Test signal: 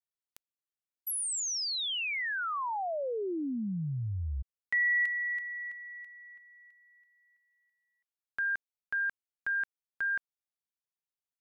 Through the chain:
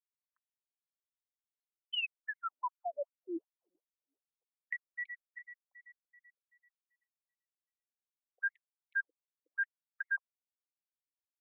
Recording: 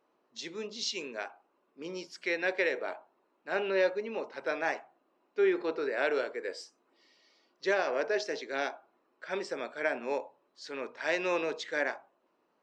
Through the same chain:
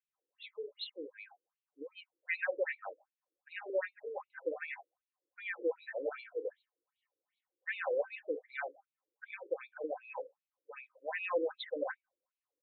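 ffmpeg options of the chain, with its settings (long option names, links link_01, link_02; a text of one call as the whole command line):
ffmpeg -i in.wav -af "afftdn=noise_reduction=15:noise_floor=-43,aecho=1:1:3.9:0.61,afftfilt=real='re*between(b*sr/1024,370*pow(3100/370,0.5+0.5*sin(2*PI*2.6*pts/sr))/1.41,370*pow(3100/370,0.5+0.5*sin(2*PI*2.6*pts/sr))*1.41)':imag='im*between(b*sr/1024,370*pow(3100/370,0.5+0.5*sin(2*PI*2.6*pts/sr))/1.41,370*pow(3100/370,0.5+0.5*sin(2*PI*2.6*pts/sr))*1.41)':win_size=1024:overlap=0.75,volume=-1.5dB" out.wav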